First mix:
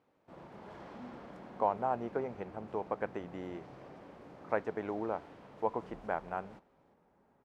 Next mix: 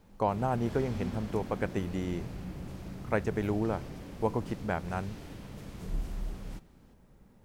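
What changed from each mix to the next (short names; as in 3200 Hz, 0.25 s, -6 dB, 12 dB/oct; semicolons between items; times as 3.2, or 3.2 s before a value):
speech: entry -1.40 s; master: remove band-pass 820 Hz, Q 0.93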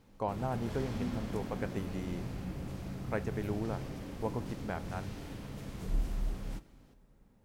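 speech -7.0 dB; reverb: on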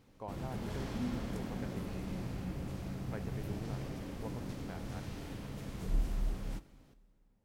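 speech -10.5 dB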